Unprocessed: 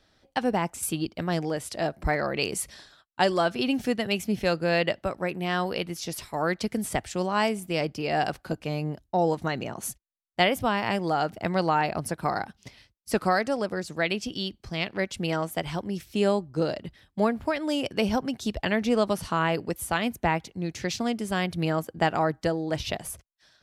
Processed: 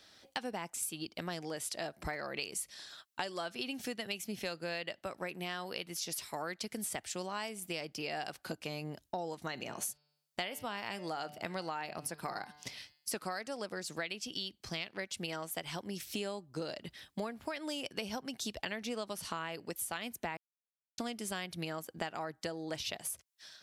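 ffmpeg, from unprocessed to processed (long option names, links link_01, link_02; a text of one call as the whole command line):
ffmpeg -i in.wav -filter_complex "[0:a]asettb=1/sr,asplit=3[link_01][link_02][link_03];[link_01]atrim=end=9.514[link_04];[link_02]atrim=start=9.51:end=13.13,asetpts=PTS-STARTPTS,afade=type=in:duration=0.004:curve=qsin,afade=type=out:start_time=3.616:duration=0.004:curve=qsin,bandreject=frequency=148.4:width_type=h:width=4,bandreject=frequency=296.8:width_type=h:width=4,bandreject=frequency=445.2:width_type=h:width=4,bandreject=frequency=593.6:width_type=h:width=4,bandreject=frequency=742:width_type=h:width=4,bandreject=frequency=890.4:width_type=h:width=4,bandreject=frequency=1038.8:width_type=h:width=4,bandreject=frequency=1187.2:width_type=h:width=4,bandreject=frequency=1335.6:width_type=h:width=4,bandreject=frequency=1484:width_type=h:width=4,bandreject=frequency=1632.4:width_type=h:width=4,bandreject=frequency=1780.8:width_type=h:width=4,bandreject=frequency=1929.2:width_type=h:width=4,bandreject=frequency=2077.6:width_type=h:width=4,bandreject=frequency=2226:width_type=h:width=4,bandreject=frequency=2374.4:width_type=h:width=4,bandreject=frequency=2522.8:width_type=h:width=4,bandreject=frequency=2671.2:width_type=h:width=4,bandreject=frequency=2819.6:width_type=h:width=4,bandreject=frequency=2968:width_type=h:width=4,bandreject=frequency=3116.4:width_type=h:width=4,bandreject=frequency=3264.8:width_type=h:width=4,bandreject=frequency=3413.2:width_type=h:width=4,bandreject=frequency=3561.6:width_type=h:width=4,bandreject=frequency=3710:width_type=h:width=4,bandreject=frequency=3858.4:width_type=h:width=4,bandreject=frequency=4006.8:width_type=h:width=4,bandreject=frequency=4155.2:width_type=h:width=4,bandreject=frequency=4303.6:width_type=h:width=4,bandreject=frequency=4452:width_type=h:width=4,bandreject=frequency=4600.4:width_type=h:width=4,bandreject=frequency=4748.8:width_type=h:width=4,bandreject=frequency=4897.2:width_type=h:width=4,bandreject=frequency=5045.6:width_type=h:width=4,bandreject=frequency=5194:width_type=h:width=4[link_05];[link_03]atrim=start=13.126[link_06];[link_04][link_05]acrossfade=duration=0.004:curve1=hsin:curve2=qsin[link_07];[link_07][link_06]acrossfade=duration=0.004:curve1=qsin:curve2=hsin,asplit=3[link_08][link_09][link_10];[link_08]atrim=end=20.37,asetpts=PTS-STARTPTS,afade=type=out:start_time=20.366:duration=0.004:curve=hsin[link_11];[link_09]atrim=start=20.37:end=20.98,asetpts=PTS-STARTPTS,volume=0[link_12];[link_10]atrim=start=20.98,asetpts=PTS-STARTPTS,afade=type=in:duration=0.004:curve=hsin[link_13];[link_11][link_12][link_13]concat=n=3:v=0:a=1,highpass=frequency=180:poles=1,highshelf=frequency=2100:gain=10,acompressor=threshold=-37dB:ratio=6" out.wav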